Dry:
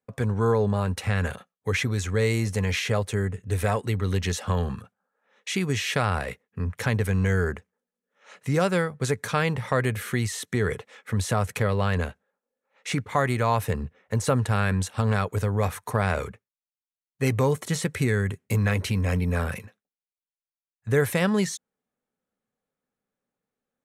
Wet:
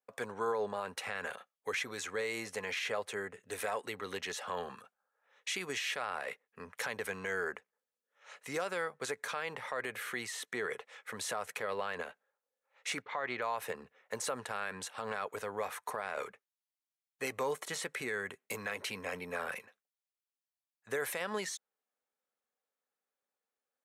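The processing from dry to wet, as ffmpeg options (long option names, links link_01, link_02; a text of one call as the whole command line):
ffmpeg -i in.wav -filter_complex "[0:a]asettb=1/sr,asplit=3[link_01][link_02][link_03];[link_01]atrim=end=13.024[link_04];[link_02]atrim=start=13.02:end=13.42,asetpts=PTS-STARTPTS,afade=type=in:duration=0.004:curve=qsin,afade=type=out:start_time=0.396:duration=0.004:curve=qsin,lowpass=frequency=4600:width=0.5412,lowpass=frequency=4600:width=1.3066[link_05];[link_03]atrim=start=13.416[link_06];[link_04][link_05]acrossfade=duration=0.004:curve1=hsin:curve2=qsin[link_07];[link_07][link_06]acrossfade=duration=0.004:curve1=qsin:curve2=hsin,highpass=540,alimiter=limit=-21.5dB:level=0:latency=1:release=68,adynamicequalizer=threshold=0.00355:dfrequency=3800:dqfactor=0.7:tfrequency=3800:tqfactor=0.7:attack=5:release=100:ratio=0.375:range=3:mode=cutabove:tftype=highshelf,volume=-3.5dB" out.wav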